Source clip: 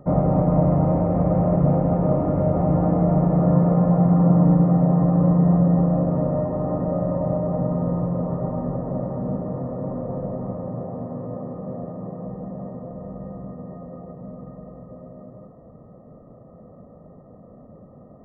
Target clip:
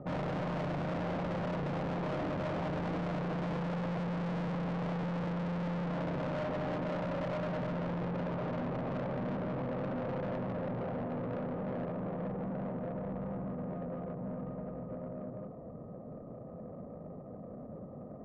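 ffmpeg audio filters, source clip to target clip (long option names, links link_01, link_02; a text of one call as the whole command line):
ffmpeg -i in.wav -af "aeval=exprs='(tanh(56.2*val(0)+0.15)-tanh(0.15))/56.2':channel_layout=same,adynamicsmooth=sensitivity=3.5:basefreq=1400,lowshelf=frequency=100:gain=-7.5,volume=2.5dB" out.wav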